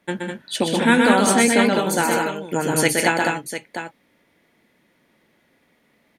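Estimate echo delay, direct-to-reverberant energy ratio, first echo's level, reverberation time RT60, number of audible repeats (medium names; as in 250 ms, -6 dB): 124 ms, no reverb, -3.5 dB, no reverb, 4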